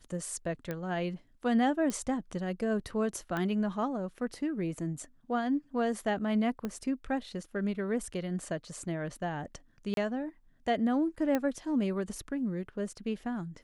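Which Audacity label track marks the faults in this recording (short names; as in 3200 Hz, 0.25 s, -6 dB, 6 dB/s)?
0.710000	0.710000	pop -22 dBFS
1.900000	1.900000	pop -20 dBFS
3.370000	3.370000	pop -21 dBFS
6.650000	6.650000	pop -22 dBFS
9.940000	9.970000	gap 32 ms
11.350000	11.350000	pop -16 dBFS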